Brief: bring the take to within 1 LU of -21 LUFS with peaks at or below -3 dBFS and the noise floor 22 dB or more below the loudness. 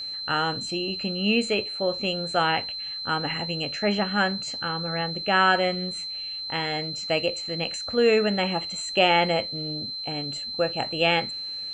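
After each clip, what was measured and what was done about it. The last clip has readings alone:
steady tone 4100 Hz; tone level -31 dBFS; loudness -25.0 LUFS; peak -6.0 dBFS; loudness target -21.0 LUFS
-> notch 4100 Hz, Q 30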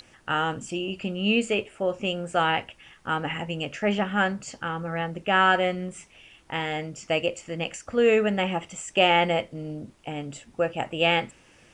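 steady tone none; loudness -26.0 LUFS; peak -6.0 dBFS; loudness target -21.0 LUFS
-> gain +5 dB; limiter -3 dBFS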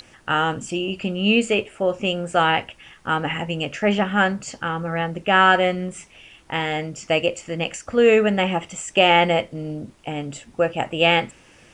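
loudness -21.0 LUFS; peak -3.0 dBFS; noise floor -52 dBFS

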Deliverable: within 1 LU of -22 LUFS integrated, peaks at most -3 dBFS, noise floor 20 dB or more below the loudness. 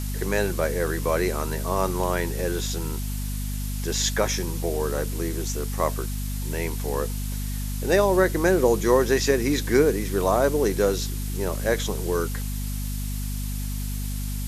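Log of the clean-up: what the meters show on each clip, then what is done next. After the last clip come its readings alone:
hum 50 Hz; harmonics up to 250 Hz; hum level -26 dBFS; noise floor -29 dBFS; noise floor target -45 dBFS; loudness -25.0 LUFS; peak -6.0 dBFS; loudness target -22.0 LUFS
-> de-hum 50 Hz, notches 5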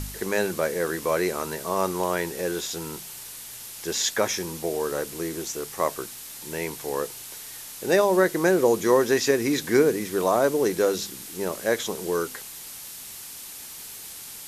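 hum none; noise floor -40 dBFS; noise floor target -45 dBFS
-> denoiser 6 dB, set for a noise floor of -40 dBFS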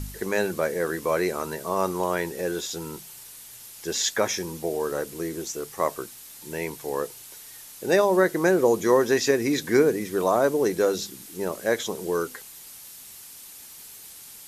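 noise floor -45 dBFS; loudness -25.0 LUFS; peak -7.5 dBFS; loudness target -22.0 LUFS
-> gain +3 dB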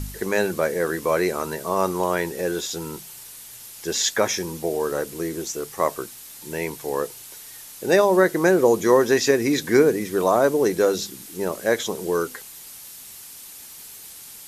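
loudness -22.0 LUFS; peak -4.5 dBFS; noise floor -42 dBFS

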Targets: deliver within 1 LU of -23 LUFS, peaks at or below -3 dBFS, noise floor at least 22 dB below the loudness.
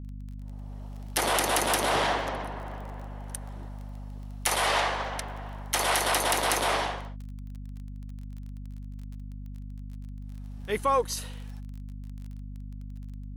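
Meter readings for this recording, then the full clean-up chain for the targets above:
ticks 23/s; hum 50 Hz; harmonics up to 250 Hz; hum level -37 dBFS; loudness -27.5 LUFS; peak -11.0 dBFS; loudness target -23.0 LUFS
-> de-click; notches 50/100/150/200/250 Hz; gain +4.5 dB

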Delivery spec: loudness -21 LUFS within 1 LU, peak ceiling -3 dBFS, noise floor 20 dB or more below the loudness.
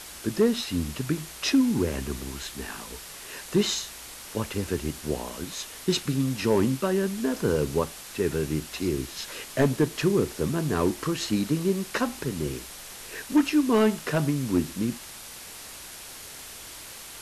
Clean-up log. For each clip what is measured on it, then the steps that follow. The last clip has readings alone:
clipped 0.4%; flat tops at -14.0 dBFS; noise floor -43 dBFS; noise floor target -47 dBFS; loudness -27.0 LUFS; peak -14.0 dBFS; loudness target -21.0 LUFS
-> clip repair -14 dBFS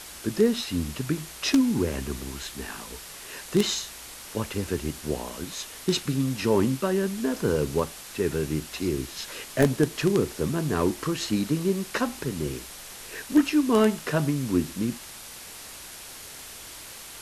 clipped 0.0%; noise floor -43 dBFS; noise floor target -47 dBFS
-> denoiser 6 dB, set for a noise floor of -43 dBFS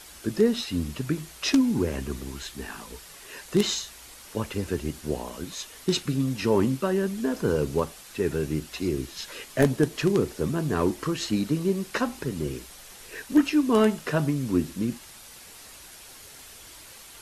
noise floor -47 dBFS; loudness -27.0 LUFS; peak -5.5 dBFS; loudness target -21.0 LUFS
-> gain +6 dB; limiter -3 dBFS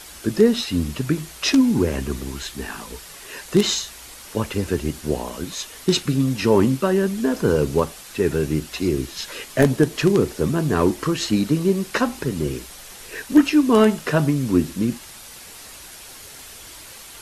loudness -21.0 LUFS; peak -3.0 dBFS; noise floor -41 dBFS

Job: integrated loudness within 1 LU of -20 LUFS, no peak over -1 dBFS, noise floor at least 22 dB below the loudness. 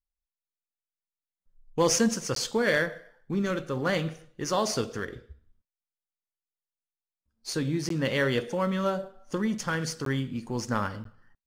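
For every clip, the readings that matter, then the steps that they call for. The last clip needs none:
dropouts 4; longest dropout 13 ms; loudness -29.0 LUFS; peak -13.0 dBFS; loudness target -20.0 LUFS
-> interpolate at 2.35/7.89/10.05/11.04, 13 ms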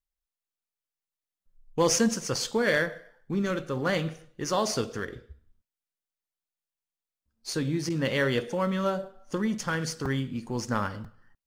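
dropouts 0; loudness -28.5 LUFS; peak -13.0 dBFS; loudness target -20.0 LUFS
-> gain +8.5 dB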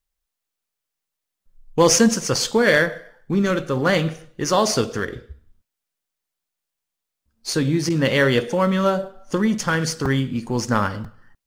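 loudness -20.5 LUFS; peak -4.5 dBFS; noise floor -83 dBFS

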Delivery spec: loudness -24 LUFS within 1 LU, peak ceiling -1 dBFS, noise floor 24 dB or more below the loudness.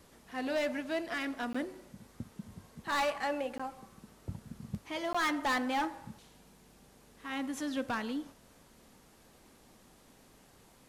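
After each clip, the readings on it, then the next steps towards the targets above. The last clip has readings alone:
clipped 1.2%; flat tops at -27.0 dBFS; dropouts 3; longest dropout 15 ms; loudness -35.5 LUFS; peak -27.0 dBFS; loudness target -24.0 LUFS
-> clip repair -27 dBFS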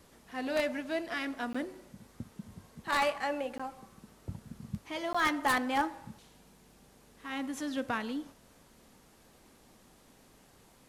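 clipped 0.0%; dropouts 3; longest dropout 15 ms
-> interpolate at 1.53/3.58/5.13, 15 ms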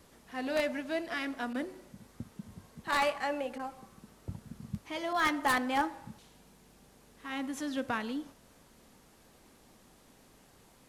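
dropouts 0; loudness -34.0 LUFS; peak -18.0 dBFS; loudness target -24.0 LUFS
-> gain +10 dB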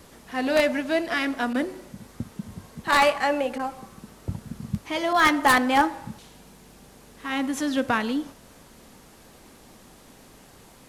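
loudness -24.0 LUFS; peak -8.0 dBFS; noise floor -51 dBFS

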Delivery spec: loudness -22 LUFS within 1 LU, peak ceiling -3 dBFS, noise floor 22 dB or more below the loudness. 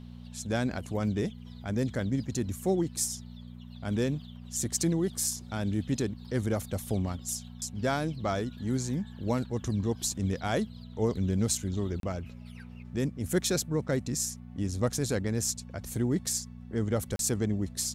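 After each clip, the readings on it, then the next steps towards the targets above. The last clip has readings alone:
dropouts 2; longest dropout 32 ms; hum 60 Hz; harmonics up to 240 Hz; hum level -42 dBFS; loudness -31.5 LUFS; peak -14.5 dBFS; loudness target -22.0 LUFS
-> interpolate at 12/17.16, 32 ms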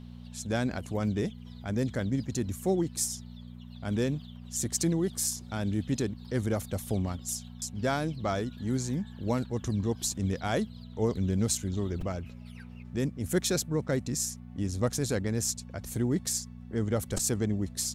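dropouts 0; hum 60 Hz; harmonics up to 240 Hz; hum level -42 dBFS
-> de-hum 60 Hz, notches 4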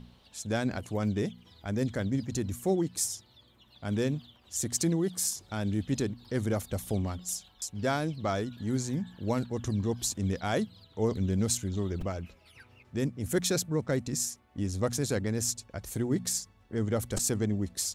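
hum none; loudness -31.5 LUFS; peak -14.5 dBFS; loudness target -22.0 LUFS
-> gain +9.5 dB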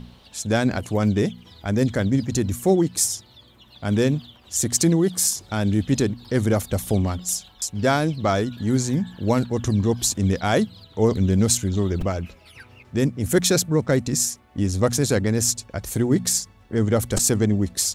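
loudness -22.0 LUFS; peak -5.0 dBFS; noise floor -52 dBFS

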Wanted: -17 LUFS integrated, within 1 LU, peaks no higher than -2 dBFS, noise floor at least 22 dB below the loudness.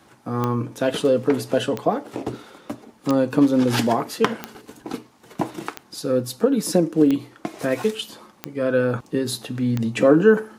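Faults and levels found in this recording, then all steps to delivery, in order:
clicks 8; loudness -21.5 LUFS; peak -2.5 dBFS; loudness target -17.0 LUFS
-> de-click; gain +4.5 dB; limiter -2 dBFS

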